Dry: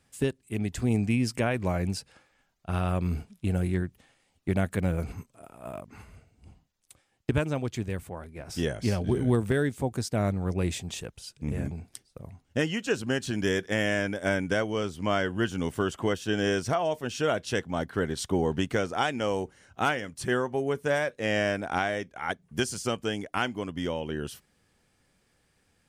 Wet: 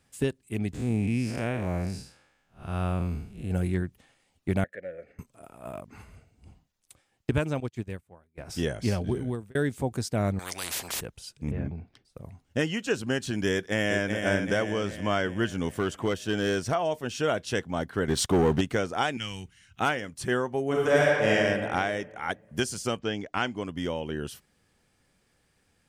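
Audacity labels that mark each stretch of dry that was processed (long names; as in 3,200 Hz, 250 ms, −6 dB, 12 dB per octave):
0.730000	3.510000	spectrum smeared in time width 172 ms
4.640000	5.190000	pair of resonant band-passes 990 Hz, apart 1.7 octaves
7.600000	8.380000	expander for the loud parts 2.5 to 1, over −46 dBFS
8.970000	9.550000	fade out
10.390000	11.010000	every bin compressed towards the loudest bin 10 to 1
11.510000	12.050000	high-frequency loss of the air 270 metres
13.520000	14.240000	delay throw 380 ms, feedback 55%, level −5.5 dB
15.770000	16.720000	hard clipping −19.5 dBFS
18.080000	18.610000	leveller curve on the samples passes 2
19.170000	19.800000	drawn EQ curve 130 Hz 0 dB, 190 Hz −4 dB, 560 Hz −23 dB, 1,900 Hz 0 dB, 2,900 Hz +6 dB, 4,400 Hz 0 dB
20.660000	21.310000	thrown reverb, RT60 1.9 s, DRR −5 dB
22.980000	23.630000	low-pass filter 5,000 Hz → 10,000 Hz 24 dB per octave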